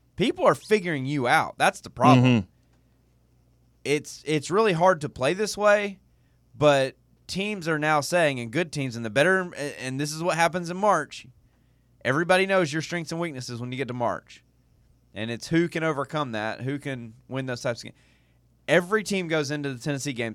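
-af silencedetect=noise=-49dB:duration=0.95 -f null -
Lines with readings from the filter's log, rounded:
silence_start: 2.46
silence_end: 3.86 | silence_duration: 1.39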